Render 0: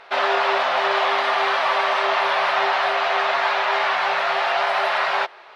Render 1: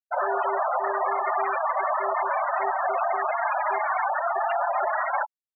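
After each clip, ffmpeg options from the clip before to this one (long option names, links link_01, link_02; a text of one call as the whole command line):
ffmpeg -i in.wav -af "afftfilt=real='re*gte(hypot(re,im),0.251)':imag='im*gte(hypot(re,im),0.251)':win_size=1024:overlap=0.75,lowpass=3300,alimiter=limit=-17.5dB:level=0:latency=1:release=92,volume=1dB" out.wav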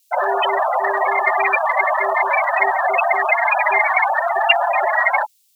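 ffmpeg -i in.wav -filter_complex "[0:a]equalizer=frequency=1400:width=1.8:gain=-9.5,acrossover=split=390|830[link_01][link_02][link_03];[link_03]acontrast=67[link_04];[link_01][link_02][link_04]amix=inputs=3:normalize=0,aexciter=amount=13.4:drive=2.8:freq=2200,volume=6dB" out.wav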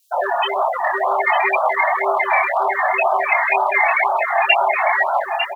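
ffmpeg -i in.wav -filter_complex "[0:a]asplit=2[link_01][link_02];[link_02]adelay=901,lowpass=frequency=1800:poles=1,volume=-3dB,asplit=2[link_03][link_04];[link_04]adelay=901,lowpass=frequency=1800:poles=1,volume=0.38,asplit=2[link_05][link_06];[link_06]adelay=901,lowpass=frequency=1800:poles=1,volume=0.38,asplit=2[link_07][link_08];[link_08]adelay=901,lowpass=frequency=1800:poles=1,volume=0.38,asplit=2[link_09][link_10];[link_10]adelay=901,lowpass=frequency=1800:poles=1,volume=0.38[link_11];[link_01][link_03][link_05][link_07][link_09][link_11]amix=inputs=6:normalize=0,flanger=delay=22.5:depth=3.7:speed=1.4,afftfilt=real='re*(1-between(b*sr/1024,390*pow(2200/390,0.5+0.5*sin(2*PI*2*pts/sr))/1.41,390*pow(2200/390,0.5+0.5*sin(2*PI*2*pts/sr))*1.41))':imag='im*(1-between(b*sr/1024,390*pow(2200/390,0.5+0.5*sin(2*PI*2*pts/sr))/1.41,390*pow(2200/390,0.5+0.5*sin(2*PI*2*pts/sr))*1.41))':win_size=1024:overlap=0.75,volume=3dB" out.wav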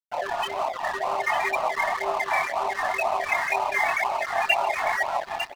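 ffmpeg -i in.wav -af "aeval=exprs='sgn(val(0))*max(abs(val(0))-0.0398,0)':channel_layout=same,aecho=1:1:144:0.0891,volume=-6dB" out.wav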